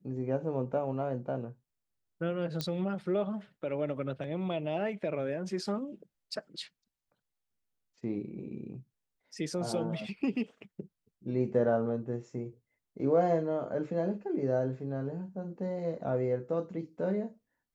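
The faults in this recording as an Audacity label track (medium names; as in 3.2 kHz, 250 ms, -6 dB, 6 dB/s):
2.610000	2.610000	pop -18 dBFS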